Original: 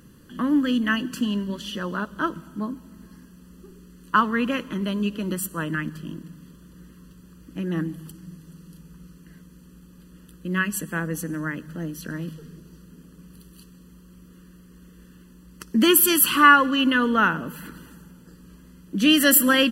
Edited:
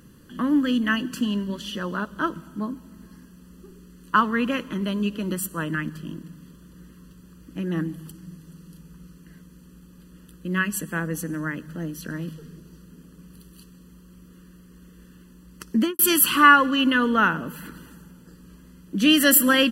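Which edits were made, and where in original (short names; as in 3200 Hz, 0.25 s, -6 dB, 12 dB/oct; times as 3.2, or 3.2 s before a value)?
15.74–15.99 studio fade out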